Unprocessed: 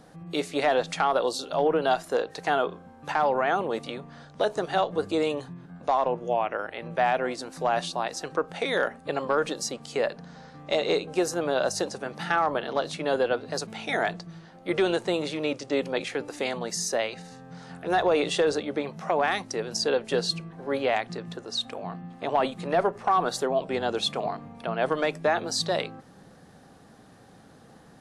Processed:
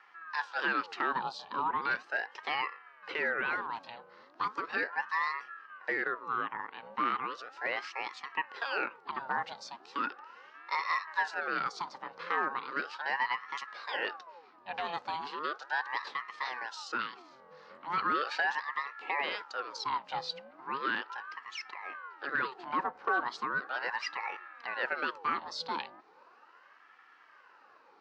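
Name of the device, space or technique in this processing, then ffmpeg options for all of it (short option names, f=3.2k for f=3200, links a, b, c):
voice changer toy: -af "aeval=exprs='val(0)*sin(2*PI*940*n/s+940*0.65/0.37*sin(2*PI*0.37*n/s))':c=same,highpass=500,equalizer=f=660:t=q:w=4:g=-10,equalizer=f=2.2k:t=q:w=4:g=-6,equalizer=f=3.4k:t=q:w=4:g=-7,lowpass=f=4.3k:w=0.5412,lowpass=f=4.3k:w=1.3066,volume=-1.5dB"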